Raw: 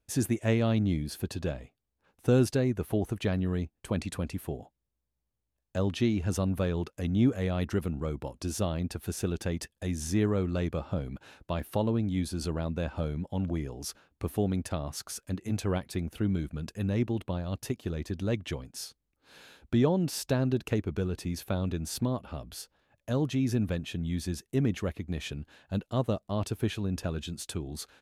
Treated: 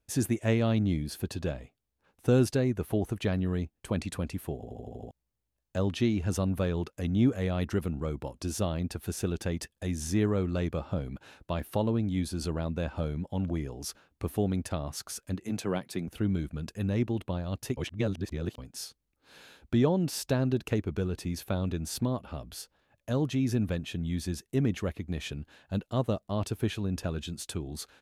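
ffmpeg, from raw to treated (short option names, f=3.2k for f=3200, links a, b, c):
-filter_complex "[0:a]asettb=1/sr,asplit=3[a][b][c];[a]atrim=end=15.444[d];[b]atrim=start=15.44:end=16.08,asetpts=PTS-STARTPTS,afade=t=in:d=0.004:c=qsin,afade=t=out:st=0.636:d=0.004:c=qsin,highpass=f=130:w=0.5412,highpass=f=130:w=1.3066[e];[c]atrim=start=16.076[f];[d][e]acrossfade=d=0.004:c1=hsin:c2=qsin[g];[g][f]acrossfade=d=0.004:c1=qsin:c2=hsin,asplit=10[h][i][j][k][l][m][n][o][p][q];[h]atrim=end=4.632[r];[i]atrim=start=4.548:end=4.632[s];[j]atrim=start=4.548:end=4.632[t];[k]atrim=start=4.548:end=4.632[u];[l]atrim=start=4.548:end=4.632[v];[m]atrim=start=4.548:end=4.632[w];[n]atrim=start=4.548:end=4.632[x];[o]atrim=start=5.108:end=17.772[y];[p]atrim=start=17.768:end=18.582,asetpts=PTS-STARTPTS,areverse[z];[q]atrim=start=18.578[aa];[r][s]acrossfade=d=0.004:c1=hsin:c2=hsin[ab];[ab][t]acrossfade=d=0.004:c1=hsin:c2=hsin[ac];[ac][u]acrossfade=d=0.004:c1=hsin:c2=hsin[ad];[ad][v]acrossfade=d=0.004:c1=hsin:c2=hsin[ae];[ae][w]acrossfade=d=0.004:c1=hsin:c2=hsin[af];[af][x]acrossfade=d=0.004:c1=hsin:c2=hsin[ag];[ag][y]acrossfade=d=0.004:c1=hsin:c2=hsin[ah];[ah][z]acrossfade=d=0.004:c1=hsin:c2=hsin[ai];[ai][aa]acrossfade=d=0.004:c1=hsin:c2=hsin"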